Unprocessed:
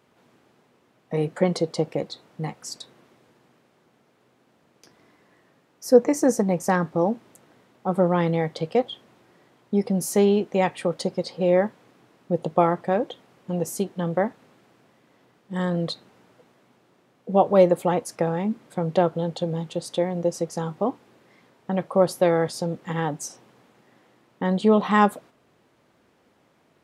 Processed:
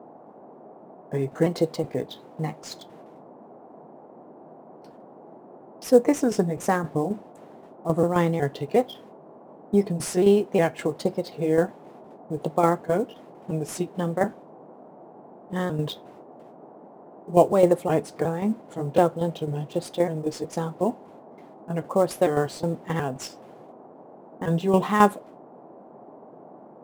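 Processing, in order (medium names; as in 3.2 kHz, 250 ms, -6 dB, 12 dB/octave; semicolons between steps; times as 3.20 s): pitch shift switched off and on -2 st, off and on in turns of 365 ms; gate with hold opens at -46 dBFS; in parallel at -8.5 dB: sample-rate reducer 8.4 kHz, jitter 20%; on the sum: tremolo saw down 3.8 Hz, depth 60%; band noise 160–820 Hz -47 dBFS; on a send at -15 dB: reverberation RT60 0.20 s, pre-delay 3 ms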